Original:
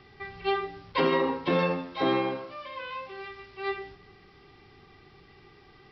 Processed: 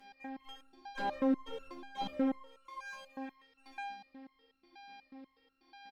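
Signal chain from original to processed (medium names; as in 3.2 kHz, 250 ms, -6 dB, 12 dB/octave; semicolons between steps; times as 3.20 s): high-pass 130 Hz; peaking EQ 270 Hz +7 dB 2.3 oct; in parallel at +0.5 dB: compression, threshold -37 dBFS, peak gain reduction 20 dB; on the sum: robot voice 268 Hz; one-sided clip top -28.5 dBFS; on a send: feedback delay 109 ms, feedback 56%, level -15.5 dB; on the sum: resonator arpeggio 8.2 Hz 200–1400 Hz; trim +3.5 dB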